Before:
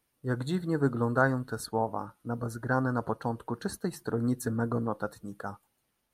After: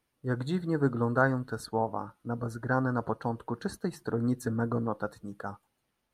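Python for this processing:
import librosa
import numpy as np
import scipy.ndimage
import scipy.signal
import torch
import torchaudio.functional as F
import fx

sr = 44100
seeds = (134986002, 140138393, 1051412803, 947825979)

y = fx.high_shelf(x, sr, hz=7800.0, db=-9.5)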